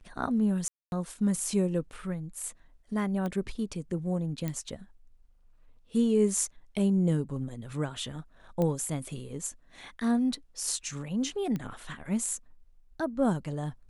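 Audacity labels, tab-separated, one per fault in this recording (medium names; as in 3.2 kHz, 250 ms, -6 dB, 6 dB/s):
0.680000	0.920000	dropout 241 ms
3.260000	3.260000	pop -22 dBFS
4.480000	4.480000	pop -19 dBFS
8.620000	8.620000	pop -18 dBFS
11.560000	11.560000	pop -22 dBFS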